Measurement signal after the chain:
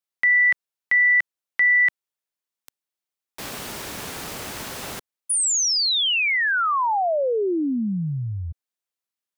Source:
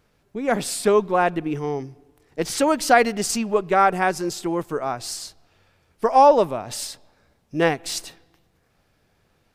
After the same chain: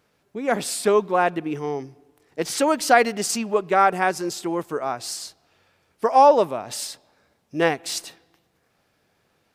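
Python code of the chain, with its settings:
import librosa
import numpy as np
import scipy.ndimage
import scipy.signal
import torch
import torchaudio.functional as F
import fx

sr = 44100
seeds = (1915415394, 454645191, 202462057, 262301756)

y = fx.highpass(x, sr, hz=200.0, slope=6)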